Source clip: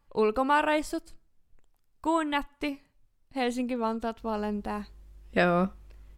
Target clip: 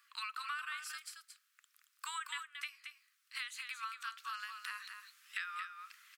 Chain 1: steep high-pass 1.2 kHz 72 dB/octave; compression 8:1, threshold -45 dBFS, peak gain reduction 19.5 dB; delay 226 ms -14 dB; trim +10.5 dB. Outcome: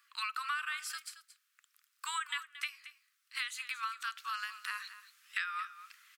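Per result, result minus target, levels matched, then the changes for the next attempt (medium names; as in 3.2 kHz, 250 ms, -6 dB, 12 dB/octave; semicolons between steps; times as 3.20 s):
compression: peak gain reduction -5 dB; echo-to-direct -7 dB
change: compression 8:1, threshold -51 dBFS, peak gain reduction 25 dB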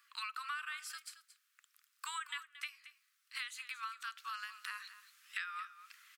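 echo-to-direct -7 dB
change: delay 226 ms -7 dB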